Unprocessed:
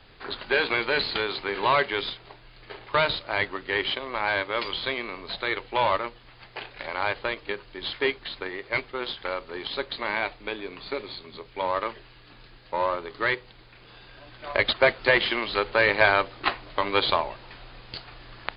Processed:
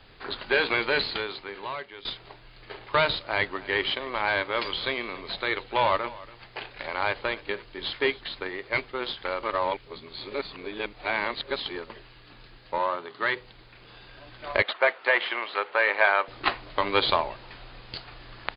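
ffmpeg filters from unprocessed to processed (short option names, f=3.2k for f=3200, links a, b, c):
-filter_complex "[0:a]asplit=3[a][b][c];[a]afade=t=out:st=3.5:d=0.02[d];[b]aecho=1:1:281:0.106,afade=t=in:st=3.5:d=0.02,afade=t=out:st=8.2:d=0.02[e];[c]afade=t=in:st=8.2:d=0.02[f];[d][e][f]amix=inputs=3:normalize=0,asettb=1/sr,asplit=3[g][h][i];[g]atrim=end=12.784[j];[h]atrim=start=12.78:end=13.36,asetpts=PTS-STARTPTS,afade=t=in:d=0.004:c=qsin,afade=t=out:st=0.576:d=0.004:c=qsin,highpass=180,equalizer=f=310:t=q:w=4:g=-5,equalizer=f=490:t=q:w=4:g=-6,equalizer=f=2.3k:t=q:w=4:g=-4,lowpass=f=4.4k:w=0.5412,lowpass=f=4.4k:w=1.3066[k];[i]atrim=start=13.356[l];[j][k]acrossfade=d=0.004:c1=hsin:c2=qsin[m];[m][l]acrossfade=d=0.004:c1=qsin:c2=hsin,asettb=1/sr,asplit=3[n][o][p];[n]atrim=end=14.624[q];[o]atrim=start=14.62:end=16.28,asetpts=PTS-STARTPTS,afade=t=in:d=0.004:c=qsin,afade=t=out:st=1.656:d=0.004:c=qsin,highpass=600,lowpass=2.5k[r];[p]atrim=start=16.276[s];[q][r]acrossfade=d=0.004:c1=hsin:c2=qsin[t];[t][s]acrossfade=d=0.004:c1=qsin:c2=hsin,asplit=4[u][v][w][x];[u]atrim=end=2.05,asetpts=PTS-STARTPTS,afade=t=out:st=0.96:d=1.09:c=qua:silence=0.149624[y];[v]atrim=start=2.05:end=9.432,asetpts=PTS-STARTPTS,afade=t=in:d=0.004:c=hsin:silence=0.149624[z];[w]atrim=start=9.428:end=11.902,asetpts=PTS-STARTPTS,areverse[aa];[x]atrim=start=11.898[ab];[y][z]concat=n=2:v=0:a=1[ac];[ac][aa]acrossfade=d=0.004:c1=hsin:c2=hsin[ad];[ad][ab]acrossfade=d=0.004:c1=hsin:c2=hsin"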